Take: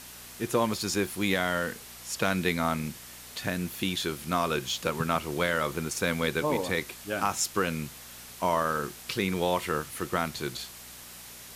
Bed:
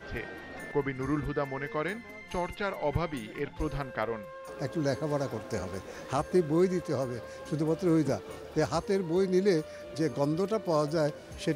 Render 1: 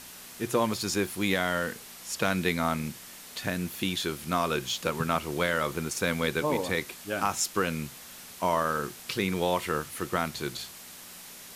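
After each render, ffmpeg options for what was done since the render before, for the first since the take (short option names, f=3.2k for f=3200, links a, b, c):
-af "bandreject=f=60:t=h:w=4,bandreject=f=120:t=h:w=4"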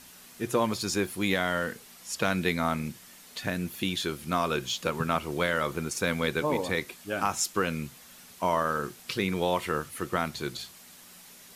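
-af "afftdn=nr=6:nf=-46"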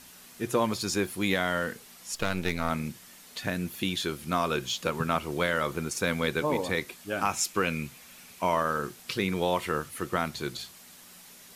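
-filter_complex "[0:a]asplit=3[a][b][c];[a]afade=t=out:st=2.14:d=0.02[d];[b]aeval=exprs='if(lt(val(0),0),0.251*val(0),val(0))':c=same,afade=t=in:st=2.14:d=0.02,afade=t=out:st=2.69:d=0.02[e];[c]afade=t=in:st=2.69:d=0.02[f];[d][e][f]amix=inputs=3:normalize=0,asettb=1/sr,asplit=3[g][h][i];[g]atrim=end=7.264[j];[h]atrim=start=7.26:end=8.62,asetpts=PTS-STARTPTS,afade=t=in:d=0.004:c=qsin,afade=t=out:st=1.356:d=0.004:c=qsin,equalizer=f=2.4k:t=o:w=0.29:g=7.5[k];[i]atrim=start=8.616[l];[j][k]acrossfade=d=0.004:c1=hsin:c2=qsin[m];[m][l]acrossfade=d=0.004:c1=qsin:c2=hsin"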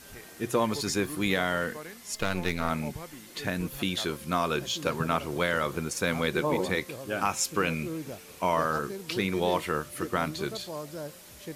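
-filter_complex "[1:a]volume=-10.5dB[a];[0:a][a]amix=inputs=2:normalize=0"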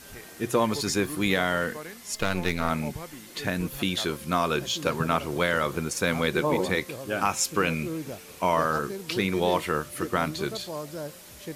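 -af "volume=2.5dB"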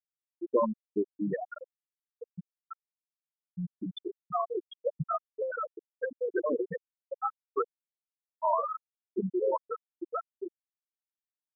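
-af "highpass=f=120:p=1,afftfilt=real='re*gte(hypot(re,im),0.355)':imag='im*gte(hypot(re,im),0.355)':win_size=1024:overlap=0.75"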